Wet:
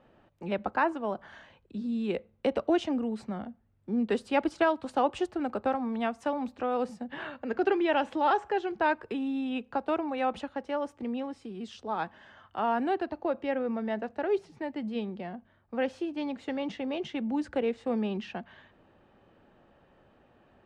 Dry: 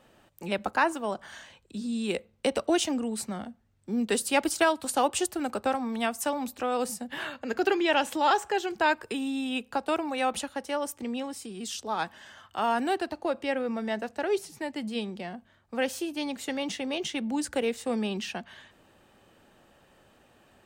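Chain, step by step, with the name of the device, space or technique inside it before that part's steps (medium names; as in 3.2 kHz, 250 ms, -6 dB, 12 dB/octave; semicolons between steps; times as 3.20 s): phone in a pocket (low-pass 3.9 kHz 12 dB/octave; treble shelf 2.1 kHz -10.5 dB)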